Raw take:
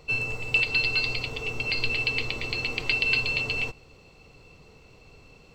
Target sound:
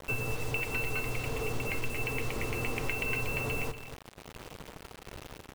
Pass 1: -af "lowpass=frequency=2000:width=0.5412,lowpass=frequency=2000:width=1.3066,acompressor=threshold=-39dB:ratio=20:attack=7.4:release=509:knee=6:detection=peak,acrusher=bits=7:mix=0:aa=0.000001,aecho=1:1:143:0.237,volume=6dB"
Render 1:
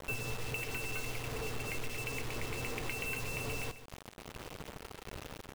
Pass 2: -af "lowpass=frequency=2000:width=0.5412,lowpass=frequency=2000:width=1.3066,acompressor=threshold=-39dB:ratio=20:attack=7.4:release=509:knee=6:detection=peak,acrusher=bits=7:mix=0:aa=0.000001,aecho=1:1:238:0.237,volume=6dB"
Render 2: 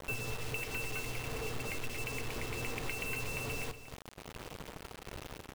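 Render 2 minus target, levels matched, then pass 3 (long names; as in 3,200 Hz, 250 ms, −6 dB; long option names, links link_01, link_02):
downward compressor: peak gain reduction +6 dB
-af "lowpass=frequency=2000:width=0.5412,lowpass=frequency=2000:width=1.3066,acompressor=threshold=-32.5dB:ratio=20:attack=7.4:release=509:knee=6:detection=peak,acrusher=bits=7:mix=0:aa=0.000001,aecho=1:1:238:0.237,volume=6dB"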